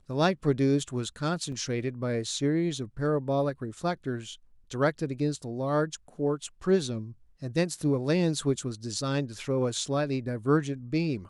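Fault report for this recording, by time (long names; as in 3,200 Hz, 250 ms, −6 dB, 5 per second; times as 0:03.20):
0:01.52: drop-out 3.8 ms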